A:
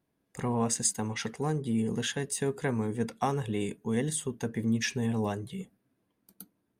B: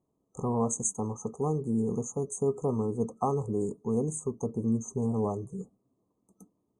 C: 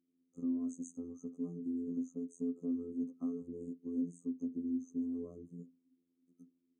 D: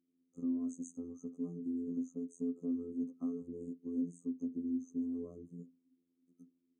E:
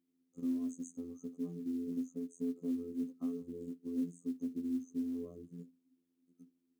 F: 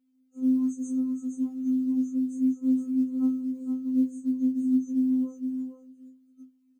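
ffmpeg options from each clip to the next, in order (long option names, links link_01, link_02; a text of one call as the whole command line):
ffmpeg -i in.wav -af "lowpass=frequency=8100:width=0.5412,lowpass=frequency=8100:width=1.3066,afftfilt=real='re*(1-between(b*sr/4096,1300,6100))':imag='im*(1-between(b*sr/4096,1300,6100))':win_size=4096:overlap=0.75,equalizer=frequency=420:width_type=o:width=0.35:gain=4" out.wav
ffmpeg -i in.wav -filter_complex "[0:a]afftfilt=real='hypot(re,im)*cos(PI*b)':imag='0':win_size=2048:overlap=0.75,asplit=3[link_01][link_02][link_03];[link_01]bandpass=frequency=270:width_type=q:width=8,volume=0dB[link_04];[link_02]bandpass=frequency=2290:width_type=q:width=8,volume=-6dB[link_05];[link_03]bandpass=frequency=3010:width_type=q:width=8,volume=-9dB[link_06];[link_04][link_05][link_06]amix=inputs=3:normalize=0,asplit=2[link_07][link_08];[link_08]acompressor=threshold=-52dB:ratio=6,volume=0dB[link_09];[link_07][link_09]amix=inputs=2:normalize=0,volume=3dB" out.wav
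ffmpeg -i in.wav -af anull out.wav
ffmpeg -i in.wav -af "acrusher=bits=8:mode=log:mix=0:aa=0.000001" out.wav
ffmpeg -i in.wav -af "aecho=1:1:469:0.473,afftfilt=real='re*3.46*eq(mod(b,12),0)':imag='im*3.46*eq(mod(b,12),0)':win_size=2048:overlap=0.75,volume=3dB" out.wav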